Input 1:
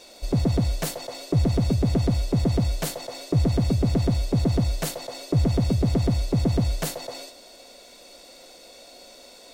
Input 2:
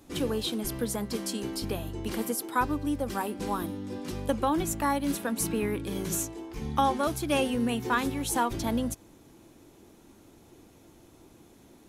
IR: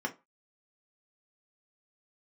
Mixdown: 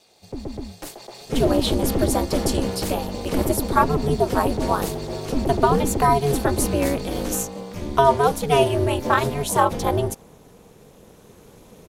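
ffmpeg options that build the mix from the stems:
-filter_complex "[0:a]highpass=82,volume=-7dB[link_01];[1:a]adynamicequalizer=threshold=0.00794:dfrequency=660:dqfactor=1.1:tfrequency=660:tqfactor=1.1:attack=5:release=100:ratio=0.375:range=4:mode=boostabove:tftype=bell,adelay=1200,volume=0.5dB[link_02];[link_01][link_02]amix=inputs=2:normalize=0,dynaudnorm=framelen=770:gausssize=3:maxgain=10.5dB,aeval=exprs='val(0)*sin(2*PI*140*n/s)':channel_layout=same"

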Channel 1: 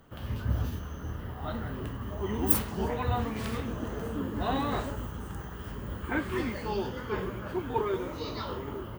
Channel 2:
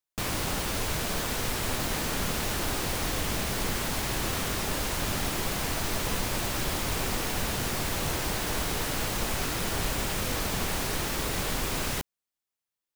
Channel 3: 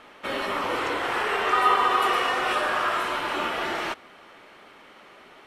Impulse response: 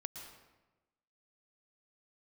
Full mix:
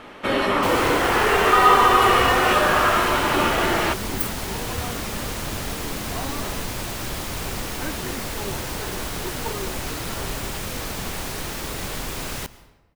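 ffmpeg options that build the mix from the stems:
-filter_complex "[0:a]adelay=1700,volume=-3dB[link_01];[1:a]adelay=450,volume=-2dB,asplit=2[link_02][link_03];[link_03]volume=-7.5dB[link_04];[2:a]lowshelf=frequency=330:gain=9.5,acontrast=70,volume=-1dB[link_05];[3:a]atrim=start_sample=2205[link_06];[link_04][link_06]afir=irnorm=-1:irlink=0[link_07];[link_01][link_02][link_05][link_07]amix=inputs=4:normalize=0"

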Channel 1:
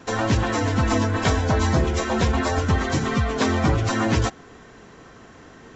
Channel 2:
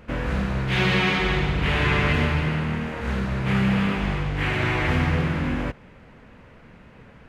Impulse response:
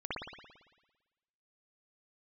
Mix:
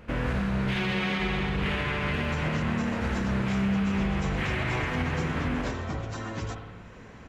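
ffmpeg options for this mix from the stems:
-filter_complex "[0:a]acompressor=mode=upward:threshold=-30dB:ratio=2.5,adelay=2250,volume=-16dB,asplit=2[link_01][link_02];[link_02]volume=-7.5dB[link_03];[1:a]alimiter=limit=-17.5dB:level=0:latency=1:release=177,volume=-3dB,asplit=2[link_04][link_05];[link_05]volume=-9dB[link_06];[2:a]atrim=start_sample=2205[link_07];[link_03][link_06]amix=inputs=2:normalize=0[link_08];[link_08][link_07]afir=irnorm=-1:irlink=0[link_09];[link_01][link_04][link_09]amix=inputs=3:normalize=0,alimiter=limit=-19dB:level=0:latency=1:release=52"

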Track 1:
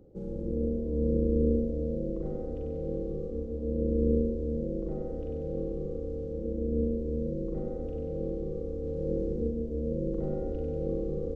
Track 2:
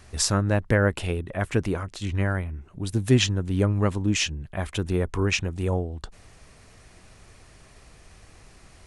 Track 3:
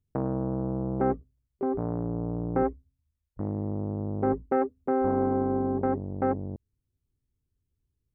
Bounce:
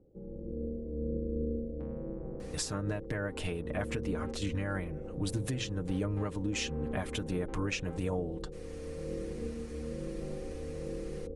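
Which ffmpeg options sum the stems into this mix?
ffmpeg -i stem1.wav -i stem2.wav -i stem3.wav -filter_complex "[0:a]lowpass=1100,volume=-7.5dB[link_01];[1:a]bandreject=frequency=60:width_type=h:width=6,bandreject=frequency=120:width_type=h:width=6,aecho=1:1:6.6:0.67,acompressor=threshold=-24dB:ratio=10,adelay=2400,volume=-2.5dB[link_02];[2:a]asoftclip=type=tanh:threshold=-23.5dB,adelay=1650,volume=-17.5dB[link_03];[link_01][link_02][link_03]amix=inputs=3:normalize=0,alimiter=limit=-23.5dB:level=0:latency=1:release=329" out.wav

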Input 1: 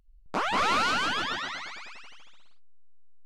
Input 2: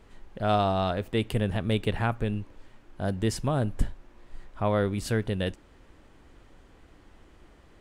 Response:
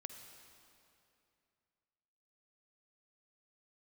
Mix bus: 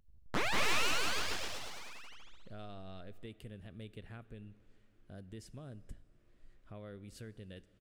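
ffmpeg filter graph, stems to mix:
-filter_complex "[0:a]aeval=exprs='abs(val(0))':channel_layout=same,volume=-3dB[link_01];[1:a]equalizer=frequency=900:width_type=o:width=0.67:gain=-11.5,acompressor=threshold=-35dB:ratio=2,adelay=2100,volume=-17dB,asplit=2[link_02][link_03];[link_03]volume=-6.5dB[link_04];[2:a]atrim=start_sample=2205[link_05];[link_04][link_05]afir=irnorm=-1:irlink=0[link_06];[link_01][link_02][link_06]amix=inputs=3:normalize=0"

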